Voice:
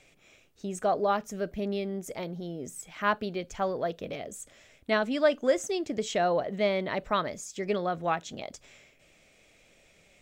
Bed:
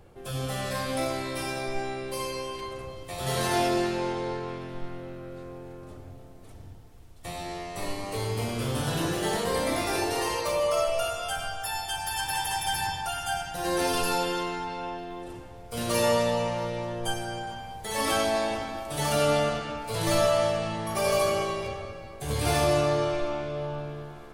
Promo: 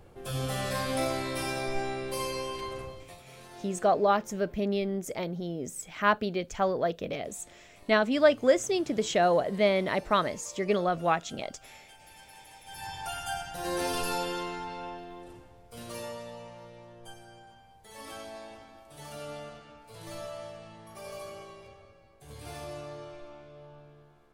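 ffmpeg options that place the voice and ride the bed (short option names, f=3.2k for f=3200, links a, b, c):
-filter_complex "[0:a]adelay=3000,volume=2.5dB[a];[1:a]volume=18dB,afade=t=out:st=2.79:d=0.44:silence=0.0749894,afade=t=in:st=12.66:d=0.44:silence=0.11885,afade=t=out:st=14.76:d=1.38:silence=0.223872[b];[a][b]amix=inputs=2:normalize=0"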